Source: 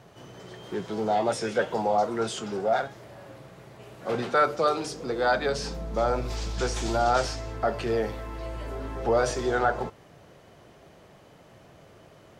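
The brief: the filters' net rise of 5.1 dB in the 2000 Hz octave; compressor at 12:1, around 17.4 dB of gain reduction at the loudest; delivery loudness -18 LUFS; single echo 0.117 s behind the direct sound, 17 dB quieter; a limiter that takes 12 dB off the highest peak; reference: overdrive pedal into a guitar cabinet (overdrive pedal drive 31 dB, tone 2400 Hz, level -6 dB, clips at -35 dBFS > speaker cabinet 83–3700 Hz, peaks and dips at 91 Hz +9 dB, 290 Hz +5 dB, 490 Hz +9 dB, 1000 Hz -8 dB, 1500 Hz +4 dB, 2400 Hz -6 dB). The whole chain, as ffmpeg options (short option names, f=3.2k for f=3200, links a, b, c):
-filter_complex "[0:a]equalizer=f=2k:t=o:g=4.5,acompressor=threshold=-35dB:ratio=12,alimiter=level_in=12.5dB:limit=-24dB:level=0:latency=1,volume=-12.5dB,aecho=1:1:117:0.141,asplit=2[a][b];[b]highpass=f=720:p=1,volume=31dB,asoftclip=type=tanh:threshold=-35dB[c];[a][c]amix=inputs=2:normalize=0,lowpass=f=2.4k:p=1,volume=-6dB,highpass=83,equalizer=f=91:t=q:w=4:g=9,equalizer=f=290:t=q:w=4:g=5,equalizer=f=490:t=q:w=4:g=9,equalizer=f=1k:t=q:w=4:g=-8,equalizer=f=1.5k:t=q:w=4:g=4,equalizer=f=2.4k:t=q:w=4:g=-6,lowpass=f=3.7k:w=0.5412,lowpass=f=3.7k:w=1.3066,volume=21dB"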